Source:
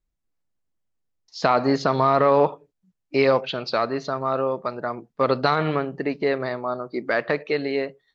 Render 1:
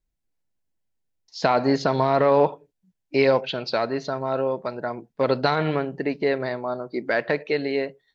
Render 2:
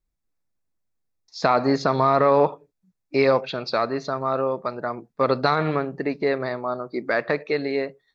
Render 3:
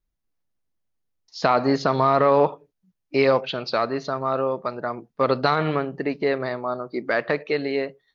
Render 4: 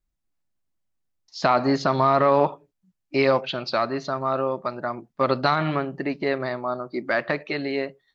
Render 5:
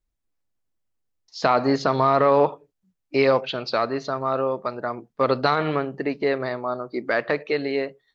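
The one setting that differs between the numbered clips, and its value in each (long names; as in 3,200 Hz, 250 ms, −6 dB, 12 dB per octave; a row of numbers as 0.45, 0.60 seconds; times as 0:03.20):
notch filter, centre frequency: 1,200, 3,000, 7,700, 460, 170 Hertz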